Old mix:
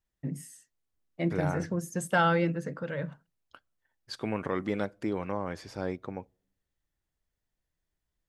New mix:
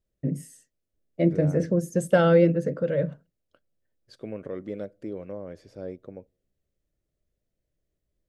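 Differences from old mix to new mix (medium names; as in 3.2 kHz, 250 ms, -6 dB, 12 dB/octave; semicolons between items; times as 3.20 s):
second voice -12.0 dB; master: add resonant low shelf 700 Hz +6.5 dB, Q 3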